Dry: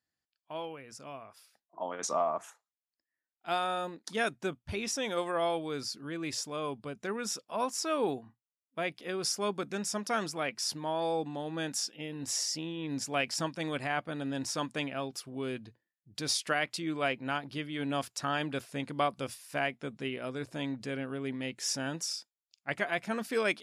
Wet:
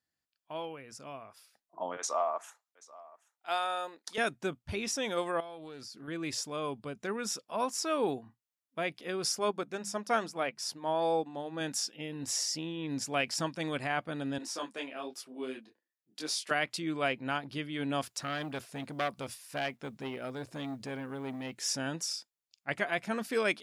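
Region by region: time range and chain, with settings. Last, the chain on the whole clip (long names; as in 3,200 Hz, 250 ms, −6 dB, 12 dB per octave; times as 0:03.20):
0:01.97–0:04.18: high-pass filter 520 Hz + single-tap delay 782 ms −21 dB
0:05.40–0:06.08: downward compressor 5 to 1, threshold −43 dBFS + highs frequency-modulated by the lows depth 0.14 ms
0:09.39–0:11.61: parametric band 700 Hz +4 dB 2 octaves + mains-hum notches 50/100/150/200 Hz + expander for the loud parts, over −43 dBFS
0:14.38–0:16.51: high-pass filter 240 Hz 24 dB per octave + micro pitch shift up and down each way 37 cents
0:18.03–0:21.72: log-companded quantiser 8 bits + saturating transformer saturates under 1,700 Hz
whole clip: no processing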